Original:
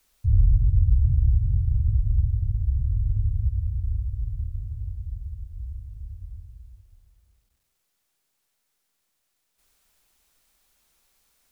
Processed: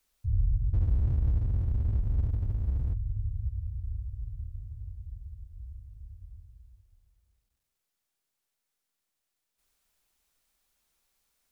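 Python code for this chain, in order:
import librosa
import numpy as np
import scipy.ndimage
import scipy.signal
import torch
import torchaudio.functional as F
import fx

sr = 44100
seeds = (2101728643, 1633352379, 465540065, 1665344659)

y = fx.power_curve(x, sr, exponent=0.7, at=(0.73, 2.94))
y = y * 10.0 ** (-8.5 / 20.0)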